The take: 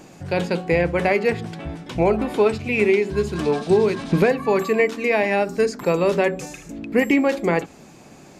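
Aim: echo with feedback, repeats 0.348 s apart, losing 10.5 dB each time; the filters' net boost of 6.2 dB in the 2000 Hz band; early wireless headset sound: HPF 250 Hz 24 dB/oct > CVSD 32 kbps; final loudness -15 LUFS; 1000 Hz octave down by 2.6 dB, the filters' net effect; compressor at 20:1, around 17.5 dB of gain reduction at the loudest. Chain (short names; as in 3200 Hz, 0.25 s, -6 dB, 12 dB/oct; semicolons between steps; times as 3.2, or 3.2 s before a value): bell 1000 Hz -5.5 dB; bell 2000 Hz +8.5 dB; compressor 20:1, threshold -29 dBFS; HPF 250 Hz 24 dB/oct; feedback echo 0.348 s, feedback 30%, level -10.5 dB; CVSD 32 kbps; gain +19.5 dB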